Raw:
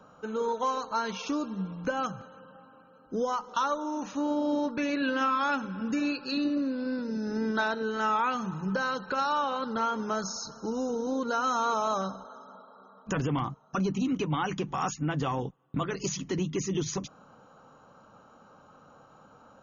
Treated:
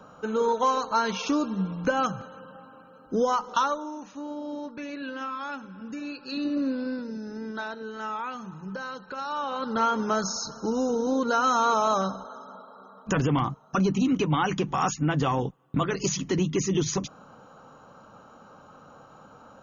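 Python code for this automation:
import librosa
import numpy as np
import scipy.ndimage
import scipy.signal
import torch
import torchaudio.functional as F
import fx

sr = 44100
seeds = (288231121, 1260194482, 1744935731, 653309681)

y = fx.gain(x, sr, db=fx.line((3.55, 5.5), (4.05, -7.0), (6.05, -7.0), (6.69, 3.5), (7.36, -6.0), (9.19, -6.0), (9.82, 5.0)))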